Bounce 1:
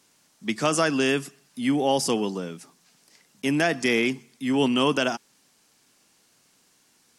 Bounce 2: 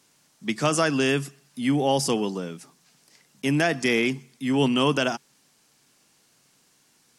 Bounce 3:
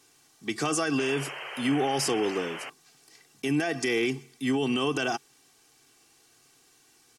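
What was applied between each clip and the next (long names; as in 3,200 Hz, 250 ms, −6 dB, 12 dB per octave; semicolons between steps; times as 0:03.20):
parametric band 140 Hz +7 dB 0.23 octaves
comb filter 2.6 ms, depth 67%; brickwall limiter −18 dBFS, peak gain reduction 10.5 dB; sound drawn into the spectrogram noise, 0:00.98–0:02.70, 350–3,200 Hz −39 dBFS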